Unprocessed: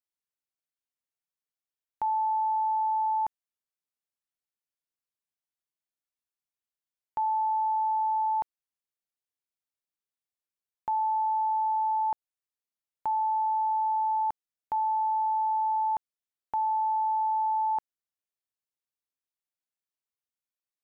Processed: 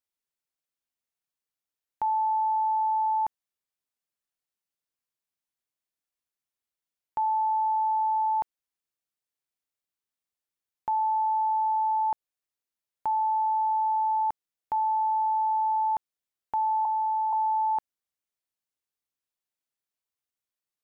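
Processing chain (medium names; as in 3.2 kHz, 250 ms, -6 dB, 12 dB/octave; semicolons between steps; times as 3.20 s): 16.85–17.33 s: low-pass 1 kHz 24 dB/octave; trim +1.5 dB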